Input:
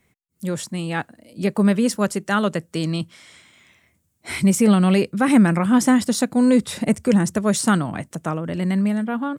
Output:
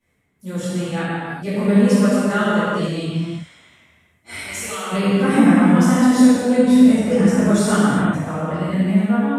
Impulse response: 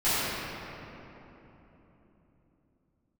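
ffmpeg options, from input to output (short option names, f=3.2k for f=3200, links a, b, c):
-filter_complex "[0:a]asplit=3[a][b][c];[a]afade=t=out:st=4.35:d=0.02[d];[b]highpass=960,afade=t=in:st=4.35:d=0.02,afade=t=out:st=4.9:d=0.02[e];[c]afade=t=in:st=4.9:d=0.02[f];[d][e][f]amix=inputs=3:normalize=0[g];[1:a]atrim=start_sample=2205,afade=t=out:st=0.33:d=0.01,atrim=end_sample=14994,asetrate=29988,aresample=44100[h];[g][h]afir=irnorm=-1:irlink=0,volume=-14.5dB"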